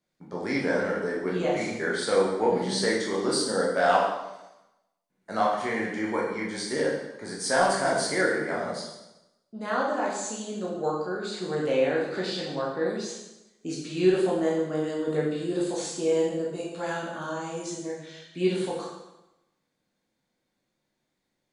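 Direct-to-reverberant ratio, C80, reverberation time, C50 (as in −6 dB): −5.0 dB, 5.0 dB, 0.95 s, 2.0 dB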